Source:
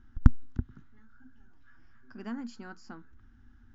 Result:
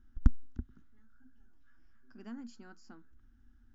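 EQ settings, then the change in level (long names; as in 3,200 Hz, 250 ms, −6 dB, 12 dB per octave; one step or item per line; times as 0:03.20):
octave-band graphic EQ 125/500/1,000/2,000/4,000 Hz −11/−4/−6/−5/−3 dB
−3.5 dB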